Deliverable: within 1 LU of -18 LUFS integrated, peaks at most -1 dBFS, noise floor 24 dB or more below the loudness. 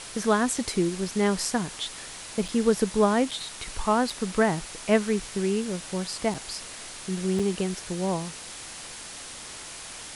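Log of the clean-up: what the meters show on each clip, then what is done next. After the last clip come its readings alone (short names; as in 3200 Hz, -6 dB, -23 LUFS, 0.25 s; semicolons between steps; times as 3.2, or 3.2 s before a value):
dropouts 5; longest dropout 5.0 ms; noise floor -41 dBFS; noise floor target -51 dBFS; loudness -27.0 LUFS; peak -7.5 dBFS; loudness target -18.0 LUFS
-> interpolate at 2.48/3.31/4.1/6.34/7.39, 5 ms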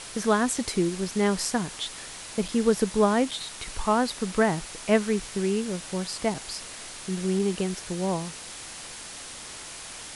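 dropouts 0; noise floor -41 dBFS; noise floor target -51 dBFS
-> denoiser 10 dB, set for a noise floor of -41 dBFS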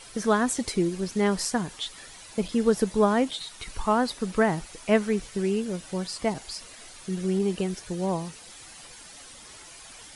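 noise floor -47 dBFS; noise floor target -51 dBFS
-> denoiser 6 dB, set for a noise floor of -47 dBFS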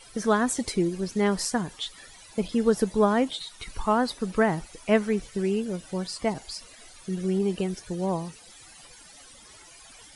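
noise floor -50 dBFS; noise floor target -51 dBFS
-> denoiser 6 dB, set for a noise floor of -50 dBFS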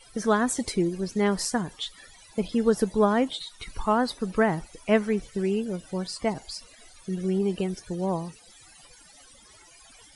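noise floor -53 dBFS; loudness -27.0 LUFS; peak -7.5 dBFS; loudness target -18.0 LUFS
-> gain +9 dB; limiter -1 dBFS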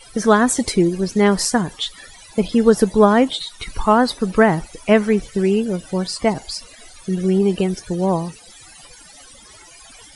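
loudness -18.0 LUFS; peak -1.0 dBFS; noise floor -44 dBFS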